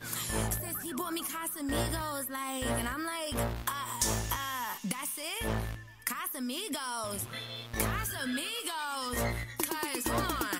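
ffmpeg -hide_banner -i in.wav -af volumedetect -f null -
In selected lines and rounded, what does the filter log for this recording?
mean_volume: -34.6 dB
max_volume: -12.3 dB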